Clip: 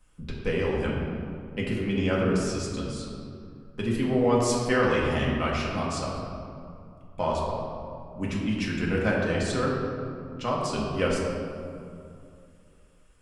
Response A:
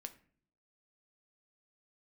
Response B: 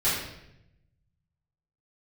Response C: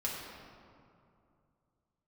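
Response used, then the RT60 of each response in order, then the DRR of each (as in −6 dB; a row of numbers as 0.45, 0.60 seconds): C; non-exponential decay, 0.85 s, 2.5 s; 7.5, −13.5, −5.0 decibels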